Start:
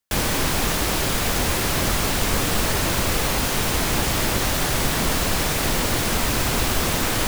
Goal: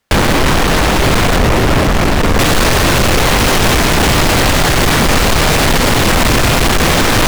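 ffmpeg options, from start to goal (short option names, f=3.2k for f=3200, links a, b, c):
-af "asetnsamples=n=441:p=0,asendcmd='1.36 lowpass f 1000;2.39 lowpass f 3000',lowpass=f=1.7k:p=1,volume=28.5dB,asoftclip=hard,volume=-28.5dB,bandreject=f=46.05:t=h:w=4,bandreject=f=92.1:t=h:w=4,bandreject=f=138.15:t=h:w=4,bandreject=f=184.2:t=h:w=4,bandreject=f=230.25:t=h:w=4,bandreject=f=276.3:t=h:w=4,bandreject=f=322.35:t=h:w=4,bandreject=f=368.4:t=h:w=4,bandreject=f=414.45:t=h:w=4,bandreject=f=460.5:t=h:w=4,bandreject=f=506.55:t=h:w=4,bandreject=f=552.6:t=h:w=4,bandreject=f=598.65:t=h:w=4,bandreject=f=644.7:t=h:w=4,bandreject=f=690.75:t=h:w=4,bandreject=f=736.8:t=h:w=4,bandreject=f=782.85:t=h:w=4,bandreject=f=828.9:t=h:w=4,bandreject=f=874.95:t=h:w=4,bandreject=f=921:t=h:w=4,bandreject=f=967.05:t=h:w=4,bandreject=f=1.0131k:t=h:w=4,bandreject=f=1.05915k:t=h:w=4,bandreject=f=1.1052k:t=h:w=4,bandreject=f=1.15125k:t=h:w=4,bandreject=f=1.1973k:t=h:w=4,bandreject=f=1.24335k:t=h:w=4,bandreject=f=1.2894k:t=h:w=4,bandreject=f=1.33545k:t=h:w=4,bandreject=f=1.3815k:t=h:w=4,bandreject=f=1.42755k:t=h:w=4,bandreject=f=1.4736k:t=h:w=4,bandreject=f=1.51965k:t=h:w=4,bandreject=f=1.5657k:t=h:w=4,bandreject=f=1.61175k:t=h:w=4,bandreject=f=1.6578k:t=h:w=4,bandreject=f=1.70385k:t=h:w=4,alimiter=level_in=27.5dB:limit=-1dB:release=50:level=0:latency=1,volume=-4.5dB"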